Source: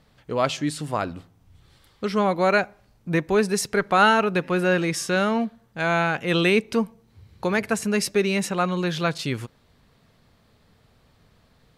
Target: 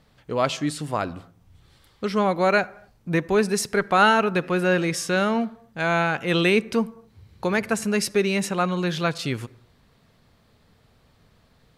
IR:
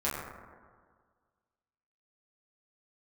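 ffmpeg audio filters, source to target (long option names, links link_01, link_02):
-filter_complex "[0:a]asplit=2[link_01][link_02];[1:a]atrim=start_sample=2205,afade=type=out:start_time=0.27:duration=0.01,atrim=end_sample=12348,adelay=57[link_03];[link_02][link_03]afir=irnorm=-1:irlink=0,volume=-30.5dB[link_04];[link_01][link_04]amix=inputs=2:normalize=0"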